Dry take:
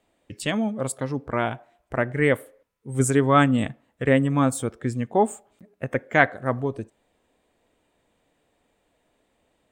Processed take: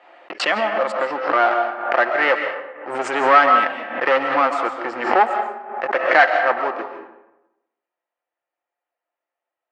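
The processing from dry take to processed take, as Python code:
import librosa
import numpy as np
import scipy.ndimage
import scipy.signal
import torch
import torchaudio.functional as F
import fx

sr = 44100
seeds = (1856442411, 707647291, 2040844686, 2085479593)

y = x + 0.31 * np.pad(x, (int(5.7 * sr / 1000.0), 0))[:len(x)]
y = fx.leveller(y, sr, passes=5)
y = fx.cabinet(y, sr, low_hz=410.0, low_slope=24, high_hz=3900.0, hz=(440.0, 800.0, 1300.0, 1800.0, 3600.0), db=(-8, 5, 6, 3, -9))
y = fx.rev_freeverb(y, sr, rt60_s=0.95, hf_ratio=0.6, predelay_ms=95, drr_db=5.5)
y = fx.pre_swell(y, sr, db_per_s=74.0)
y = y * 10.0 ** (-8.5 / 20.0)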